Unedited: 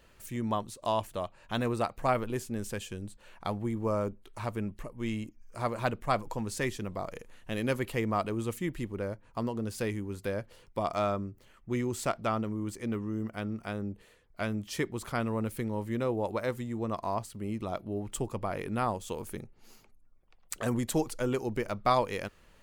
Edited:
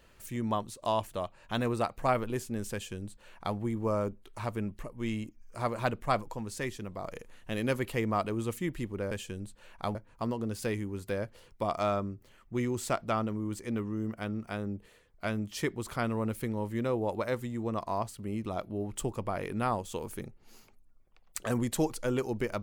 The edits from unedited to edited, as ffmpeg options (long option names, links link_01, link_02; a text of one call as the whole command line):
ffmpeg -i in.wav -filter_complex "[0:a]asplit=5[link_01][link_02][link_03][link_04][link_05];[link_01]atrim=end=6.242[link_06];[link_02]atrim=start=6.238:end=7.042,asetpts=PTS-STARTPTS,volume=-3.5dB[link_07];[link_03]atrim=start=7.038:end=9.112[link_08];[link_04]atrim=start=2.728:end=3.572[link_09];[link_05]atrim=start=9.108[link_10];[link_06][link_07]acrossfade=duration=0.004:curve1=hsin:curve2=hsin[link_11];[link_11][link_08]acrossfade=duration=0.004:curve1=hsin:curve2=hsin[link_12];[link_12][link_09]acrossfade=duration=0.004:curve1=hsin:curve2=hsin[link_13];[link_13][link_10]acrossfade=duration=0.004:curve1=hsin:curve2=hsin" out.wav